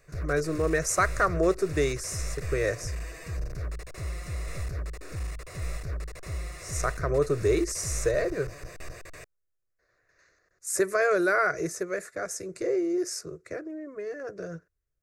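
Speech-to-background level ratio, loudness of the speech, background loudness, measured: 9.0 dB, -28.5 LUFS, -37.5 LUFS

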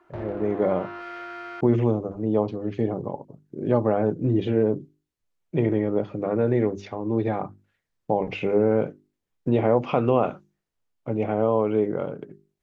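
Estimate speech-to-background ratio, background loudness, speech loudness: 12.5 dB, -37.0 LUFS, -24.5 LUFS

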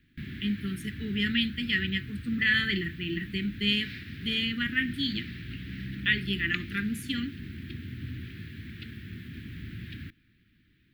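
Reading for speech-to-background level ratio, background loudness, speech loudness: 11.0 dB, -40.5 LUFS, -29.5 LUFS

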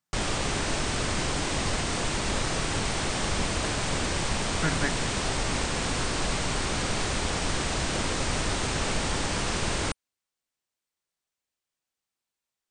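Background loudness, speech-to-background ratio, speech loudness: -28.0 LUFS, -4.5 dB, -32.5 LUFS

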